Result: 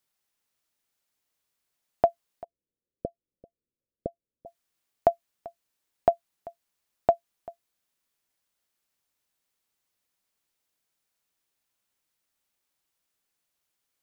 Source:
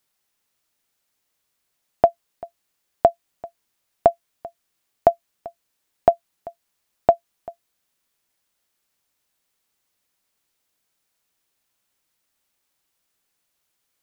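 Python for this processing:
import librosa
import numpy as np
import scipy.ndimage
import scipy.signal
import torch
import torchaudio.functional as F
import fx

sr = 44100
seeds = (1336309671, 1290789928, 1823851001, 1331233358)

y = fx.ellip_lowpass(x, sr, hz=540.0, order=4, stop_db=40, at=(2.44, 4.46))
y = y * 10.0 ** (-6.0 / 20.0)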